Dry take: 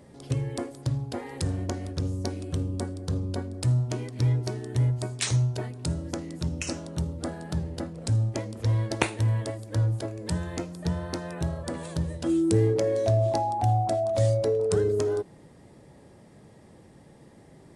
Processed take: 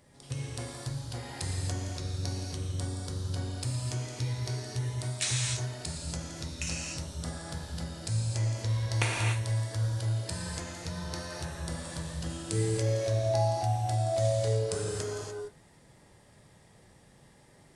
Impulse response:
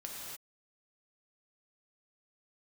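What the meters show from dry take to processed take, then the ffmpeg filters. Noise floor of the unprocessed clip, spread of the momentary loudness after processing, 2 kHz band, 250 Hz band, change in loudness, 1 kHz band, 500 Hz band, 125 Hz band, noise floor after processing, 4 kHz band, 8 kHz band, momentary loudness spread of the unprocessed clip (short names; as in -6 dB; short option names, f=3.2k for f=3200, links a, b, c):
-53 dBFS, 10 LU, 0.0 dB, -9.5 dB, -4.5 dB, -5.0 dB, -6.5 dB, -4.5 dB, -59 dBFS, +1.5 dB, +2.5 dB, 9 LU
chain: -filter_complex "[0:a]equalizer=f=290:w=0.35:g=-12[a];[1:a]atrim=start_sample=2205[b];[a][b]afir=irnorm=-1:irlink=0,volume=3dB"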